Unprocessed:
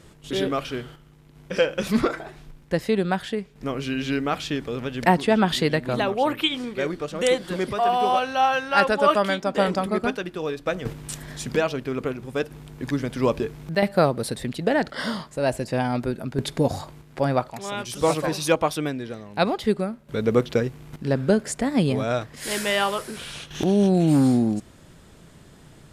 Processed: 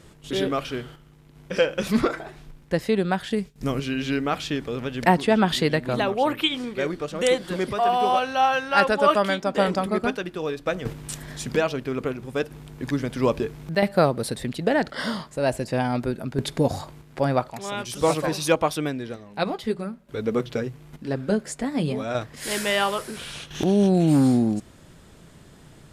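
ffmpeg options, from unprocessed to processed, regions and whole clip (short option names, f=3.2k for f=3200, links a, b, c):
-filter_complex "[0:a]asettb=1/sr,asplit=3[a][b][c];[a]atrim=end=3.304[d];[b]atrim=start=3.3:end=3.8,asetpts=PTS-STARTPTS,afade=t=in:d=0.004:c=qsin,afade=t=out:st=0.496:d=0.004:c=qsin,agate=range=-33dB:threshold=-46dB:ratio=3:release=100:detection=peak,bass=f=250:g=7,treble=f=4k:g=10[e];[c]atrim=start=3.796[f];[d][e]acrossfade=d=0.004:c1=hsin:c2=qsin[g];[g][f]acrossfade=d=0.004:c1=qsin:c2=hsin,asettb=1/sr,asplit=3[h][i][j];[h]atrim=end=19.164[k];[i]atrim=start=19.16:end=22.15,asetpts=PTS-STARTPTS,afade=t=in:d=0.004:c=qsin,afade=t=out:st=2.986:d=0.004:c=qsin,bandreject=f=60:t=h:w=6,bandreject=f=120:t=h:w=6,bandreject=f=180:t=h:w=6,flanger=delay=2.3:depth=6:regen=-41:speed=1:shape=triangular[l];[j]atrim=start=22.146[m];[k][l]acrossfade=d=0.004:c1=hsin:c2=qsin[n];[n][m]acrossfade=d=0.004:c1=qsin:c2=hsin"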